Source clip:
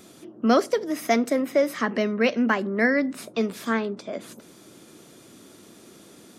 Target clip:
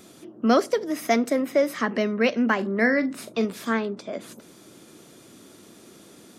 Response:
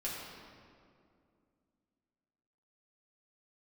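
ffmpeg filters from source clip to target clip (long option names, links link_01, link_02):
-filter_complex "[0:a]asettb=1/sr,asplit=3[link_01][link_02][link_03];[link_01]atrim=end=2.554[link_04];[link_02]atrim=start=2.55:end=3.45,asetpts=PTS-STARTPTS,afade=type=in:duration=0.004:curve=qsin,afade=type=out:start_time=0.896:duration=0.004:curve=qsin,asplit=2[link_05][link_06];[link_06]adelay=41,volume=-11.5dB[link_07];[link_05][link_07]amix=inputs=2:normalize=0,atrim=end_sample=39690[link_08];[link_03]atrim=start=3.446[link_09];[link_04][link_08]acrossfade=duration=0.004:curve1=hsin:curve2=qsin[link_10];[link_10][link_09]acrossfade=duration=0.004:curve1=qsin:curve2=hsin"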